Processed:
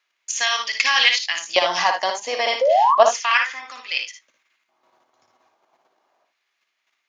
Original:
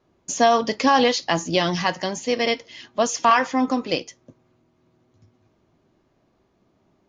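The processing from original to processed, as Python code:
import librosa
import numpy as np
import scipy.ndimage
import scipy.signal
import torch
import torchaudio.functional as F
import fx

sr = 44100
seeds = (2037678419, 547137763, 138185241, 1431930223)

p1 = fx.high_shelf(x, sr, hz=6400.0, db=-11.5, at=(2.86, 4.0))
p2 = fx.level_steps(p1, sr, step_db=9)
p3 = fx.transient(p2, sr, attack_db=-1, sustain_db=-7, at=(1.1, 2.22), fade=0.02)
p4 = fx.filter_lfo_highpass(p3, sr, shape='square', hz=0.32, low_hz=790.0, high_hz=2100.0, q=1.9)
p5 = fx.spec_paint(p4, sr, seeds[0], shape='rise', start_s=2.61, length_s=0.34, low_hz=500.0, high_hz=1200.0, level_db=-23.0)
p6 = p5 + fx.room_early_taps(p5, sr, ms=(57, 75), db=(-6.5, -11.0), dry=0)
y = p6 * 10.0 ** (7.0 / 20.0)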